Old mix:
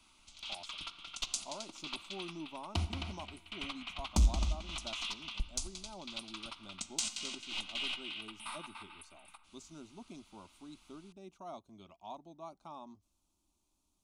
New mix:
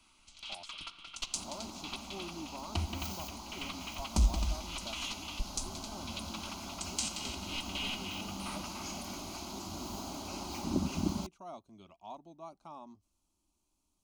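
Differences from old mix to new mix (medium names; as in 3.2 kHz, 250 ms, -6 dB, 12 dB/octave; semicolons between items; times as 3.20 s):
second sound: unmuted; master: add band-stop 3.6 kHz, Q 14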